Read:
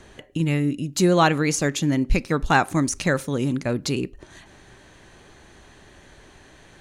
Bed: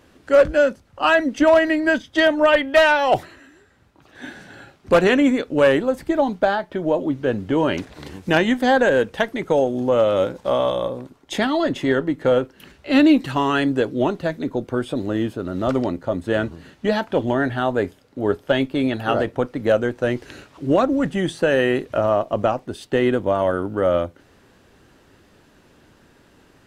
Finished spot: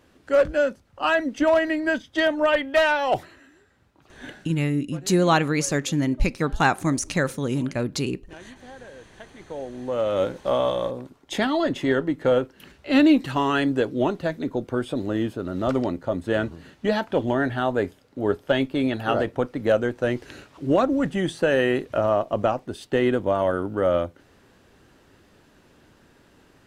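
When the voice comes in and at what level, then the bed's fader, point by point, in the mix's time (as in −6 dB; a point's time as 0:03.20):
4.10 s, −1.5 dB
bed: 0:04.34 −5 dB
0:04.77 −27.5 dB
0:09.01 −27.5 dB
0:10.25 −2.5 dB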